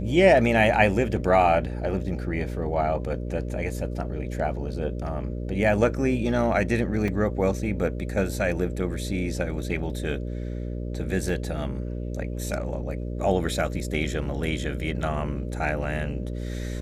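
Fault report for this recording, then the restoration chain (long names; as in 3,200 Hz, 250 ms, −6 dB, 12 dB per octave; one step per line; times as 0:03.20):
mains buzz 60 Hz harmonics 10 −31 dBFS
0:07.08: drop-out 3.7 ms
0:11.29: drop-out 2.6 ms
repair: hum removal 60 Hz, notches 10
repair the gap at 0:07.08, 3.7 ms
repair the gap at 0:11.29, 2.6 ms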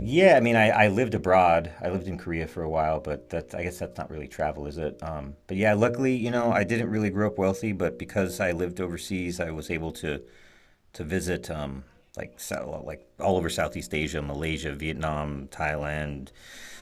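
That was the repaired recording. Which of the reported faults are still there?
none of them is left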